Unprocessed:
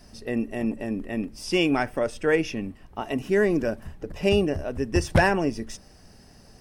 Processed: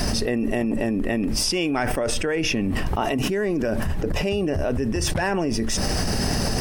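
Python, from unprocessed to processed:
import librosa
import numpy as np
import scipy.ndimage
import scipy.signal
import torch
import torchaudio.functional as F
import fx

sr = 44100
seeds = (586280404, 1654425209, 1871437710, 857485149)

y = fx.env_flatten(x, sr, amount_pct=100)
y = y * 10.0 ** (-8.0 / 20.0)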